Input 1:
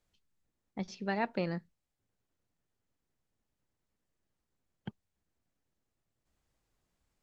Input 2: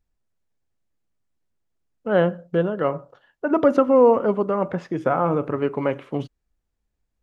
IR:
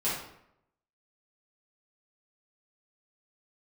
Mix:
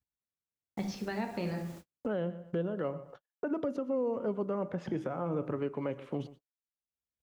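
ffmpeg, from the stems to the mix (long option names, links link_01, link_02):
-filter_complex "[0:a]volume=1dB,asplit=2[link_01][link_02];[link_02]volume=-10dB[link_03];[1:a]highpass=70,adynamicequalizer=threshold=0.0447:dfrequency=550:dqfactor=4:tfrequency=550:tqfactor=4:attack=5:release=100:ratio=0.375:range=1.5:mode=boostabove:tftype=bell,acompressor=mode=upward:threshold=-20dB:ratio=2.5,volume=-4.5dB,asplit=2[link_04][link_05];[link_05]volume=-19.5dB[link_06];[2:a]atrim=start_sample=2205[link_07];[link_03][link_07]afir=irnorm=-1:irlink=0[link_08];[link_06]aecho=0:1:122|244|366|488:1|0.22|0.0484|0.0106[link_09];[link_01][link_04][link_08][link_09]amix=inputs=4:normalize=0,agate=range=-50dB:threshold=-45dB:ratio=16:detection=peak,acrossover=split=430|3000[link_10][link_11][link_12];[link_11]acompressor=threshold=-37dB:ratio=2[link_13];[link_10][link_13][link_12]amix=inputs=3:normalize=0,alimiter=limit=-24dB:level=0:latency=1:release=458"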